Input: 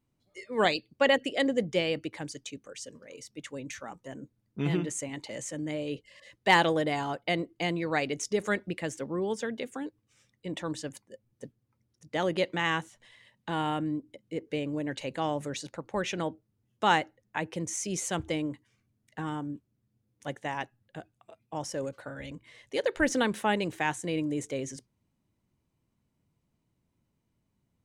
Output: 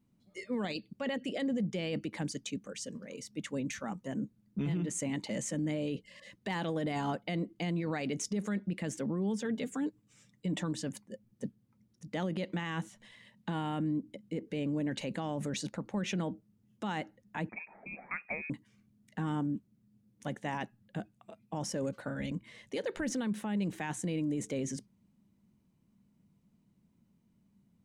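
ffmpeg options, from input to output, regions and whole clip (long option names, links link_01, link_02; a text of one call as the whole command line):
ffmpeg -i in.wav -filter_complex "[0:a]asettb=1/sr,asplit=3[link_01][link_02][link_03];[link_01]atrim=end=9.444[link_04];[link_02]atrim=start=9.44:end=10.72,asetpts=PTS-STARTPTS,afade=type=in:duration=0.004:curve=qsin,afade=type=out:start_time=1.276:duration=0.004:curve=qsin,equalizer=frequency=7400:width=5:gain=6.5,aecho=1:1:6.8:0.4,atrim=end_sample=56448[link_05];[link_03]atrim=start=10.716[link_06];[link_04][link_05]acrossfade=duration=0.004:curve1=hsin:curve2=qsin[link_07];[link_07][link_06]acrossfade=duration=0.004:curve1=qsin:curve2=hsin,asettb=1/sr,asplit=3[link_08][link_09][link_10];[link_08]atrim=end=17.494[link_11];[link_09]atrim=start=17.49:end=18.5,asetpts=PTS-STARTPTS,afade=type=in:duration=0.004:curve=qsin,afade=type=out:start_time=1.006:duration=0.004:curve=qsin,highpass=620,asoftclip=type=hard:threshold=-20.5dB,lowpass=frequency=2400:width_type=q:width=0.5098,lowpass=frequency=2400:width_type=q:width=0.6013,lowpass=frequency=2400:width_type=q:width=0.9,lowpass=frequency=2400:width_type=q:width=2.563,afreqshift=-2800[link_12];[link_10]atrim=start=18.496[link_13];[link_11][link_12]acrossfade=duration=0.004:curve1=hsin:curve2=qsin[link_14];[link_14][link_13]acrossfade=duration=0.004:curve1=qsin:curve2=hsin,equalizer=frequency=200:width_type=o:width=0.64:gain=15,acompressor=threshold=-26dB:ratio=5,alimiter=level_in=2.5dB:limit=-24dB:level=0:latency=1:release=11,volume=-2.5dB" out.wav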